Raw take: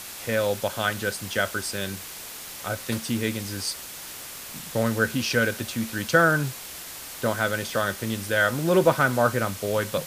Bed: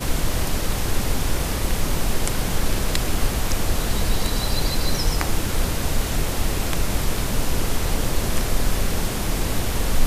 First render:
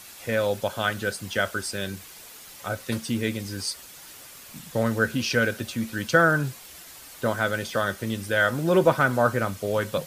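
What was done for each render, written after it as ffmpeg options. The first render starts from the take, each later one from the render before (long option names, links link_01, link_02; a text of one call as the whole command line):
ffmpeg -i in.wav -af "afftdn=noise_reduction=8:noise_floor=-39" out.wav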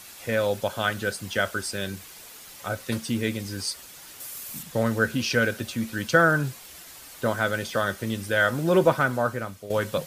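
ffmpeg -i in.wav -filter_complex "[0:a]asettb=1/sr,asplit=3[link_01][link_02][link_03];[link_01]atrim=end=4.204[link_04];[link_02]atrim=start=4.2:end=4.63,asetpts=PTS-STARTPTS,afade=type=in:duration=0.004:curve=qsin,afade=type=out:start_time=0.426:duration=0.004:curve=qsin,highshelf=frequency=7000:gain=12[link_05];[link_03]atrim=start=4.626[link_06];[link_04][link_05]acrossfade=duration=0.004:curve1=hsin:curve2=qsin[link_07];[link_07][link_06]acrossfade=duration=0.004:curve1=qsin:curve2=hsin,asplit=2[link_08][link_09];[link_08]atrim=end=9.7,asetpts=PTS-STARTPTS,afade=type=out:start_time=8.82:duration=0.88:silence=0.251189[link_10];[link_09]atrim=start=9.7,asetpts=PTS-STARTPTS,afade=type=in:duration=0.004:curve=hsin:silence=0.251189[link_11];[link_10][link_11]concat=n=2:v=0:a=1" out.wav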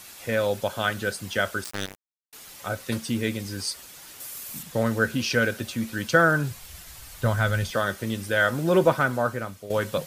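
ffmpeg -i in.wav -filter_complex "[0:a]asettb=1/sr,asplit=3[link_01][link_02][link_03];[link_01]atrim=end=1.644[link_04];[link_02]atrim=start=1.64:end=2.33,asetpts=PTS-STARTPTS,afade=type=in:duration=0.004:curve=qsin,afade=type=out:start_time=0.686:duration=0.004:curve=qsin,acrusher=bits=3:mix=0:aa=0.5[link_05];[link_03]atrim=start=2.326[link_06];[link_04][link_05]acrossfade=duration=0.004:curve1=hsin:curve2=qsin[link_07];[link_07][link_06]acrossfade=duration=0.004:curve1=qsin:curve2=hsin,asplit=3[link_08][link_09][link_10];[link_08]afade=type=out:start_time=6.5:duration=0.02[link_11];[link_09]asubboost=boost=8.5:cutoff=100,afade=type=in:start_time=6.5:duration=0.02,afade=type=out:start_time=7.71:duration=0.02[link_12];[link_10]afade=type=in:start_time=7.71:duration=0.02[link_13];[link_11][link_12][link_13]amix=inputs=3:normalize=0" out.wav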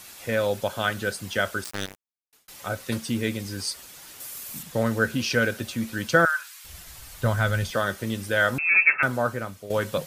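ffmpeg -i in.wav -filter_complex "[0:a]asettb=1/sr,asplit=3[link_01][link_02][link_03];[link_01]atrim=end=6.254[link_04];[link_02]atrim=start=6.25:end=6.65,asetpts=PTS-STARTPTS,afade=type=in:duration=0.004:curve=qsin,afade=type=out:start_time=0.396:duration=0.004:curve=qsin,highpass=frequency=1200:width=0.5412,highpass=frequency=1200:width=1.3066[link_05];[link_03]atrim=start=6.646[link_06];[link_04][link_05]acrossfade=duration=0.004:curve1=hsin:curve2=qsin[link_07];[link_07][link_06]acrossfade=duration=0.004:curve1=qsin:curve2=hsin,asettb=1/sr,asplit=3[link_08][link_09][link_10];[link_08]atrim=end=8.584[link_11];[link_09]atrim=start=8.58:end=9.03,asetpts=PTS-STARTPTS,afade=type=in:duration=0.004:curve=qsin,afade=type=out:start_time=0.446:duration=0.004:curve=qsin,lowpass=frequency=2400:width_type=q:width=0.5098,lowpass=frequency=2400:width_type=q:width=0.6013,lowpass=frequency=2400:width_type=q:width=0.9,lowpass=frequency=2400:width_type=q:width=2.563,afreqshift=-2800[link_12];[link_10]atrim=start=9.026[link_13];[link_11][link_12]acrossfade=duration=0.004:curve1=hsin:curve2=qsin[link_14];[link_14][link_13]acrossfade=duration=0.004:curve1=qsin:curve2=hsin,asplit=2[link_15][link_16];[link_15]atrim=end=2.48,asetpts=PTS-STARTPTS,afade=type=out:start_time=1.83:duration=0.65[link_17];[link_16]atrim=start=2.48,asetpts=PTS-STARTPTS,afade=type=in:duration=0.004:curve=hsin[link_18];[link_17][link_18]concat=n=2:v=0:a=1" out.wav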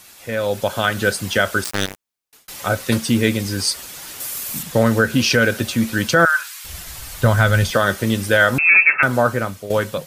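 ffmpeg -i in.wav -af "alimiter=limit=-13.5dB:level=0:latency=1:release=143,dynaudnorm=framelen=170:gausssize=7:maxgain=11dB" out.wav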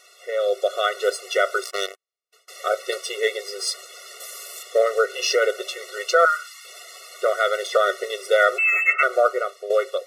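ffmpeg -i in.wav -af "adynamicsmooth=sensitivity=2:basefreq=7400,afftfilt=real='re*eq(mod(floor(b*sr/1024/370),2),1)':imag='im*eq(mod(floor(b*sr/1024/370),2),1)':win_size=1024:overlap=0.75" out.wav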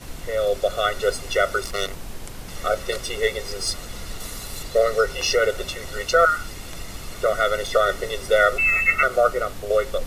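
ffmpeg -i in.wav -i bed.wav -filter_complex "[1:a]volume=-13.5dB[link_01];[0:a][link_01]amix=inputs=2:normalize=0" out.wav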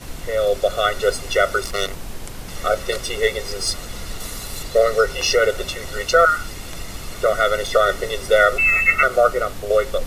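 ffmpeg -i in.wav -af "volume=3dB,alimiter=limit=-3dB:level=0:latency=1" out.wav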